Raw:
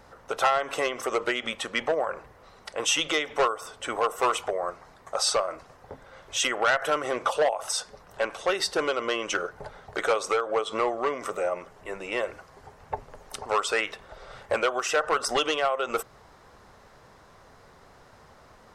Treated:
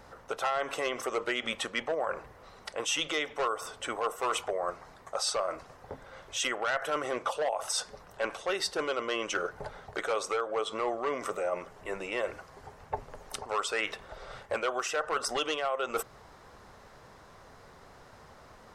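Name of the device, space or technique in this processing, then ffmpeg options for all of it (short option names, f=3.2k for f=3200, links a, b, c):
compression on the reversed sound: -af "areverse,acompressor=threshold=-28dB:ratio=4,areverse"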